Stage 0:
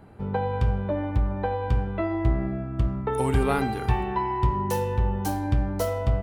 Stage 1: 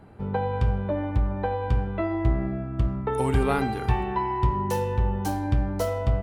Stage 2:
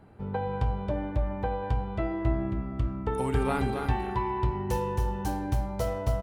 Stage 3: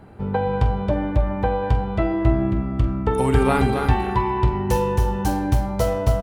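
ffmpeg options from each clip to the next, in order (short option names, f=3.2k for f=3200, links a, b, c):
-af "highshelf=f=11k:g=-6"
-af "aecho=1:1:271:0.531,volume=-4.5dB"
-filter_complex "[0:a]asplit=2[a][b];[b]adelay=45,volume=-13.5dB[c];[a][c]amix=inputs=2:normalize=0,volume=9dB"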